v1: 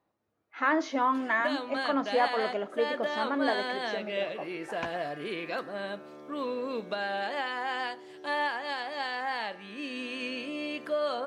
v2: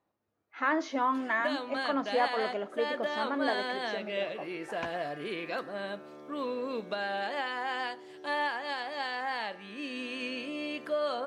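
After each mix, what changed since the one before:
reverb: off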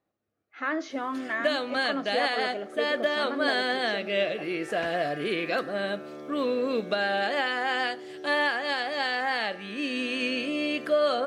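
background +8.0 dB; master: add bell 950 Hz -12.5 dB 0.25 oct

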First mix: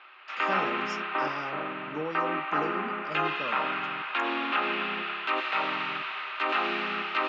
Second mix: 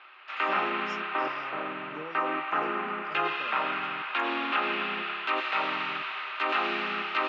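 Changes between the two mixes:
speech -7.5 dB; master: add low shelf 110 Hz -6.5 dB

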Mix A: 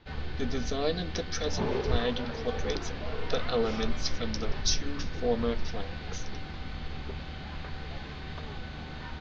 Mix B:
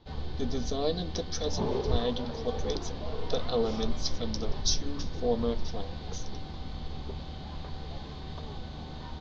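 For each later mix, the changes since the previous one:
master: add band shelf 1900 Hz -9.5 dB 1.3 oct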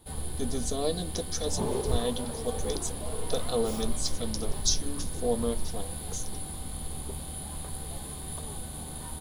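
master: remove steep low-pass 6000 Hz 72 dB/oct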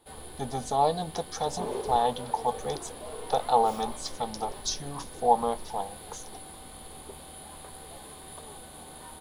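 speech: remove fixed phaser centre 350 Hz, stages 4; master: add tone controls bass -14 dB, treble -7 dB

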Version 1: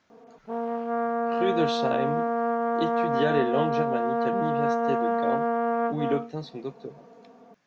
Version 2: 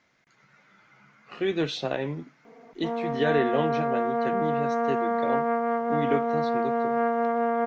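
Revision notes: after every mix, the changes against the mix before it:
background: entry +2.35 s; master: add bell 2100 Hz +10 dB 0.23 oct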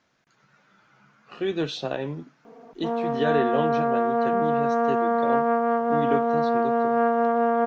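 background +3.5 dB; master: add bell 2100 Hz -10 dB 0.23 oct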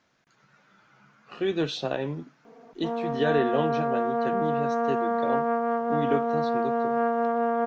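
background -3.5 dB

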